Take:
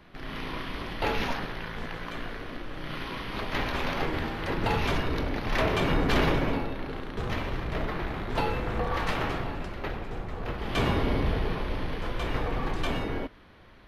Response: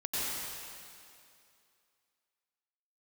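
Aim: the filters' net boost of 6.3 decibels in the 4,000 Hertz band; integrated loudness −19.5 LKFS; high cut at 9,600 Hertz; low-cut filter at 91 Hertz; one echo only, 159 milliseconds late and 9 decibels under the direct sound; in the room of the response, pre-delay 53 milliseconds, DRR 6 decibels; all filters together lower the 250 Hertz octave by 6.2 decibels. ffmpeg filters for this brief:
-filter_complex "[0:a]highpass=91,lowpass=9600,equalizer=frequency=250:width_type=o:gain=-8.5,equalizer=frequency=4000:width_type=o:gain=8.5,aecho=1:1:159:0.355,asplit=2[link_01][link_02];[1:a]atrim=start_sample=2205,adelay=53[link_03];[link_02][link_03]afir=irnorm=-1:irlink=0,volume=-13dB[link_04];[link_01][link_04]amix=inputs=2:normalize=0,volume=10dB"

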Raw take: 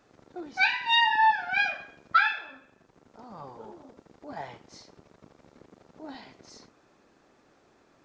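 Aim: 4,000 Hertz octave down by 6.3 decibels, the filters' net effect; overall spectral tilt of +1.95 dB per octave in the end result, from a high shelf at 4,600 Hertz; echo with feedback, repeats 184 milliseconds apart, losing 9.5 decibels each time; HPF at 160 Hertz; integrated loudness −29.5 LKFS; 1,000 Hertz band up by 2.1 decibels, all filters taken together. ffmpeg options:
ffmpeg -i in.wav -af "highpass=160,equalizer=frequency=1000:width_type=o:gain=3,equalizer=frequency=4000:width_type=o:gain=-7,highshelf=frequency=4600:gain=-4.5,aecho=1:1:184|368|552|736:0.335|0.111|0.0365|0.012,volume=-5.5dB" out.wav

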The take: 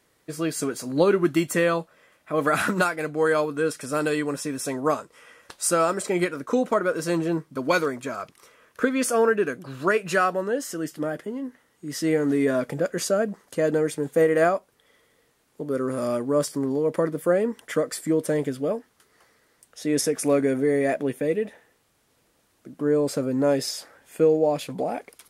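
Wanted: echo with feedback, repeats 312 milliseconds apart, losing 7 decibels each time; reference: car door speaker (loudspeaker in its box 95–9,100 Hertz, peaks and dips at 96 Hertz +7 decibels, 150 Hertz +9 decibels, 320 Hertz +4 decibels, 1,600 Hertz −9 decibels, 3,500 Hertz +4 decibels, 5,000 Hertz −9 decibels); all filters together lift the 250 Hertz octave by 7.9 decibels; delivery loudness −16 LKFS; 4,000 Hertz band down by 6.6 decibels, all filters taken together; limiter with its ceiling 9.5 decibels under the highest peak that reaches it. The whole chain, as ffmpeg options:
ffmpeg -i in.wav -af "equalizer=frequency=250:width_type=o:gain=6.5,equalizer=frequency=4000:width_type=o:gain=-6.5,alimiter=limit=-13.5dB:level=0:latency=1,highpass=95,equalizer=frequency=96:width_type=q:width=4:gain=7,equalizer=frequency=150:width_type=q:width=4:gain=9,equalizer=frequency=320:width_type=q:width=4:gain=4,equalizer=frequency=1600:width_type=q:width=4:gain=-9,equalizer=frequency=3500:width_type=q:width=4:gain=4,equalizer=frequency=5000:width_type=q:width=4:gain=-9,lowpass=frequency=9100:width=0.5412,lowpass=frequency=9100:width=1.3066,aecho=1:1:312|624|936|1248|1560:0.447|0.201|0.0905|0.0407|0.0183,volume=6dB" out.wav

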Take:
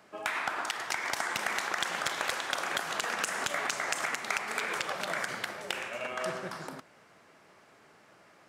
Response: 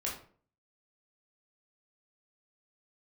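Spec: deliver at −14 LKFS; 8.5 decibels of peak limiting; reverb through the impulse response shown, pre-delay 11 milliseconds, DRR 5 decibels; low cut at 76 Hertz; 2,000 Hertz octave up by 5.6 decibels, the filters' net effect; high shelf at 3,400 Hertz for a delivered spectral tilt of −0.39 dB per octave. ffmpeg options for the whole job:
-filter_complex "[0:a]highpass=76,equalizer=frequency=2000:width_type=o:gain=5.5,highshelf=frequency=3400:gain=5,alimiter=limit=-18dB:level=0:latency=1,asplit=2[link_01][link_02];[1:a]atrim=start_sample=2205,adelay=11[link_03];[link_02][link_03]afir=irnorm=-1:irlink=0,volume=-8dB[link_04];[link_01][link_04]amix=inputs=2:normalize=0,volume=15dB"

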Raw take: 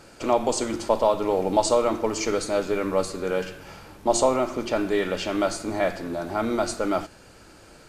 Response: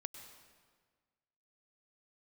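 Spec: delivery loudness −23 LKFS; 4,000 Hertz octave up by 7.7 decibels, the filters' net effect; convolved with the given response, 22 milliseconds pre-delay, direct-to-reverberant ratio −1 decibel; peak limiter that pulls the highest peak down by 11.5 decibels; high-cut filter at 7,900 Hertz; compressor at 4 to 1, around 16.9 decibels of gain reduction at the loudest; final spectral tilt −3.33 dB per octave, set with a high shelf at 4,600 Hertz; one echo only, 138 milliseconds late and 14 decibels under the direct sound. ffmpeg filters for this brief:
-filter_complex "[0:a]lowpass=7900,equalizer=frequency=4000:width_type=o:gain=5.5,highshelf=frequency=4600:gain=8,acompressor=threshold=-36dB:ratio=4,alimiter=level_in=8dB:limit=-24dB:level=0:latency=1,volume=-8dB,aecho=1:1:138:0.2,asplit=2[link_01][link_02];[1:a]atrim=start_sample=2205,adelay=22[link_03];[link_02][link_03]afir=irnorm=-1:irlink=0,volume=4.5dB[link_04];[link_01][link_04]amix=inputs=2:normalize=0,volume=15dB"

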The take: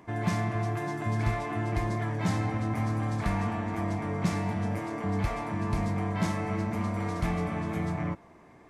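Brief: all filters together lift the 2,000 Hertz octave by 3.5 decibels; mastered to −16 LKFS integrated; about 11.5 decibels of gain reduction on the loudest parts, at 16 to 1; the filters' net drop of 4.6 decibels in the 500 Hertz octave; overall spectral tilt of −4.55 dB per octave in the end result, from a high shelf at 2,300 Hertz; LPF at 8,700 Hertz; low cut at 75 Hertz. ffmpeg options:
ffmpeg -i in.wav -af "highpass=75,lowpass=8700,equalizer=frequency=500:width_type=o:gain=-7,equalizer=frequency=2000:width_type=o:gain=6.5,highshelf=frequency=2300:gain=-4.5,acompressor=threshold=-35dB:ratio=16,volume=23.5dB" out.wav

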